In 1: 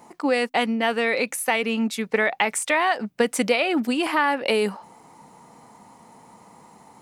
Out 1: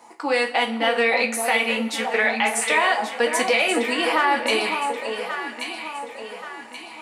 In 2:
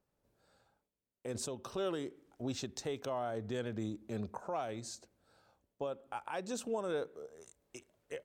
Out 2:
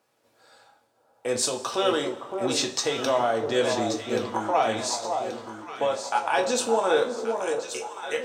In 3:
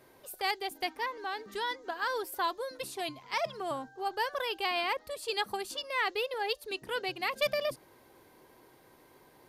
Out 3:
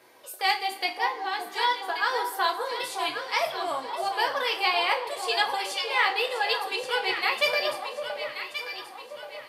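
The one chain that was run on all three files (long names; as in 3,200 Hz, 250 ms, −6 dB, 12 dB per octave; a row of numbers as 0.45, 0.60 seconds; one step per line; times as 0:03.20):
meter weighting curve A
delay that swaps between a low-pass and a high-pass 565 ms, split 1,100 Hz, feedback 65%, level −5 dB
coupled-rooms reverb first 0.26 s, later 1.6 s, from −18 dB, DRR 1.5 dB
boost into a limiter +8.5 dB
normalise the peak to −9 dBFS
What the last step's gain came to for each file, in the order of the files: −8.0, +6.0, −4.5 decibels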